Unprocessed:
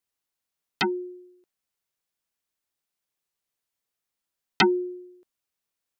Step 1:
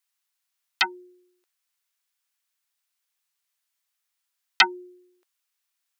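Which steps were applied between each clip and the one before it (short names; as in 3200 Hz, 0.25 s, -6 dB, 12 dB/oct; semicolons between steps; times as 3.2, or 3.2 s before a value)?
HPF 1100 Hz 12 dB/oct; gain +5.5 dB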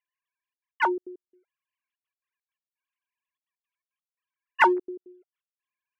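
sine-wave speech; in parallel at -9 dB: overloaded stage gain 23 dB; on the sum: step gate "xxxxxx.x.xx.x..x" 169 bpm -60 dB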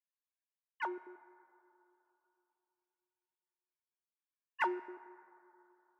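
resonator 85 Hz, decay 1.1 s, harmonics odd, mix 50%; plate-style reverb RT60 3.2 s, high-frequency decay 0.3×, DRR 16.5 dB; gain -9 dB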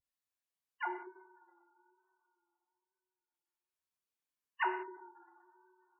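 vibrato 1.1 Hz 54 cents; spectral gate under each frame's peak -15 dB strong; non-linear reverb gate 0.22 s falling, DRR 3.5 dB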